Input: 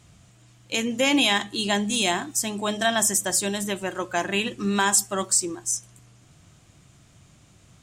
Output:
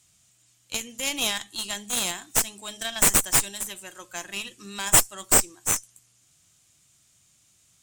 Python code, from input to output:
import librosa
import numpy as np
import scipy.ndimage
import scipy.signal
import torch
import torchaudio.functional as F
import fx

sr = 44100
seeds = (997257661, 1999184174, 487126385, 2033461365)

y = librosa.effects.preemphasis(x, coef=0.9, zi=[0.0])
y = fx.cheby_harmonics(y, sr, harmonics=(4,), levels_db=(-7,), full_scale_db=-7.5)
y = y * 10.0 ** (1.5 / 20.0)